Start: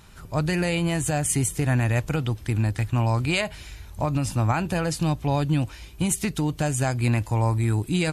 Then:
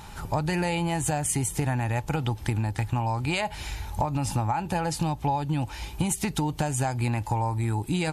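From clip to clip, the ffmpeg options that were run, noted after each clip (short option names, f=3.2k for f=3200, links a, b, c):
-af "equalizer=f=850:t=o:w=0.22:g=15,acompressor=threshold=-29dB:ratio=12,volume=6dB"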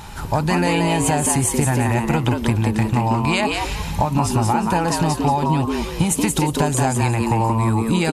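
-filter_complex "[0:a]asplit=5[a][b][c][d][e];[b]adelay=179,afreqshift=110,volume=-4dB[f];[c]adelay=358,afreqshift=220,volume=-14.2dB[g];[d]adelay=537,afreqshift=330,volume=-24.3dB[h];[e]adelay=716,afreqshift=440,volume=-34.5dB[i];[a][f][g][h][i]amix=inputs=5:normalize=0,volume=7dB"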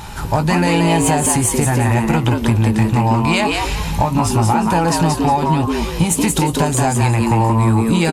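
-filter_complex "[0:a]asplit=2[a][b];[b]asoftclip=type=tanh:threshold=-18.5dB,volume=-4dB[c];[a][c]amix=inputs=2:normalize=0,asplit=2[d][e];[e]adelay=18,volume=-10.5dB[f];[d][f]amix=inputs=2:normalize=0"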